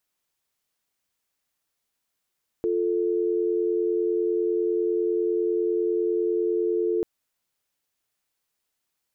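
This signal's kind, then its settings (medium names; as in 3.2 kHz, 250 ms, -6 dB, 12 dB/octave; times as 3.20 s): call progress tone dial tone, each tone -24 dBFS 4.39 s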